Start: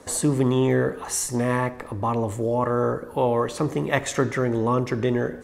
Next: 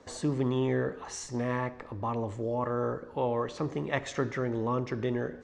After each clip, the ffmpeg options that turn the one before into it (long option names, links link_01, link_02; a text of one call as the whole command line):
ffmpeg -i in.wav -af "lowpass=frequency=6200:width=0.5412,lowpass=frequency=6200:width=1.3066,volume=-8dB" out.wav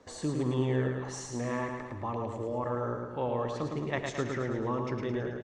ffmpeg -i in.wav -af "aecho=1:1:109|218|327|436|545|654|763:0.596|0.322|0.174|0.0938|0.0506|0.0274|0.0148,volume=-3dB" out.wav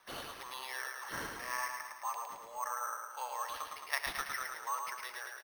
ffmpeg -i in.wav -af "highpass=frequency=980:width=0.5412,highpass=frequency=980:width=1.3066,acrusher=samples=6:mix=1:aa=0.000001,volume=2.5dB" out.wav